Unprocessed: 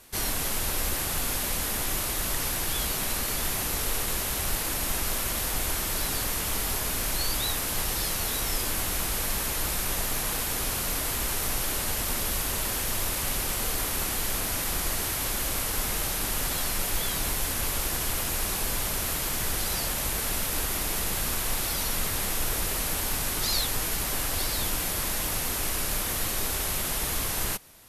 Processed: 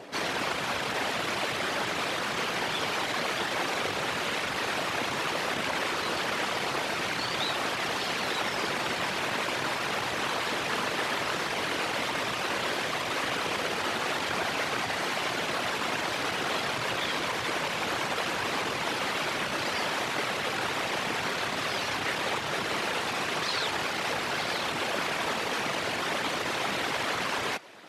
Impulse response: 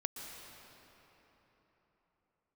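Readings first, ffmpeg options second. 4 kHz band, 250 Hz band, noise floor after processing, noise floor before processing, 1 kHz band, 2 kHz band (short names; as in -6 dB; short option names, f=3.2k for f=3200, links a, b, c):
+0.5 dB, +1.0 dB, -32 dBFS, -30 dBFS, +5.5 dB, +5.5 dB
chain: -filter_complex "[0:a]acrossover=split=700[a][b];[a]acompressor=mode=upward:threshold=-42dB:ratio=2.5[c];[c][b]amix=inputs=2:normalize=0,aeval=exprs='0.2*sin(PI/2*3.55*val(0)/0.2)':c=same,aeval=exprs='val(0)*sin(2*PI*50*n/s)':c=same,afftfilt=real='hypot(re,im)*cos(2*PI*random(0))':imag='hypot(re,im)*sin(2*PI*random(1))':win_size=512:overlap=0.75,highpass=320,lowpass=3.1k,volume=4dB"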